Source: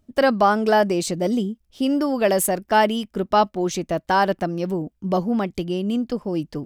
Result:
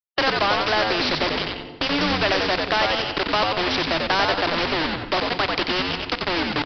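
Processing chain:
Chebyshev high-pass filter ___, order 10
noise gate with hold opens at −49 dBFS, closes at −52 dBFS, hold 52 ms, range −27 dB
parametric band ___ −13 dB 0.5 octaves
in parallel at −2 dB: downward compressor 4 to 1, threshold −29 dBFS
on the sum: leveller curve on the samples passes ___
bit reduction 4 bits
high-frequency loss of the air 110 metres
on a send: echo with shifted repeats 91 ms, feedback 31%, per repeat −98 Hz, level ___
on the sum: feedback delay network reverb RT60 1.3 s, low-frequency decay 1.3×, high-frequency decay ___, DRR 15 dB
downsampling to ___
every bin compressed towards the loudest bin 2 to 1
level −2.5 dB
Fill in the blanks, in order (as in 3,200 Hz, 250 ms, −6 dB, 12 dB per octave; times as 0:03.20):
280 Hz, 460 Hz, 1, −5.5 dB, 0.9×, 11,025 Hz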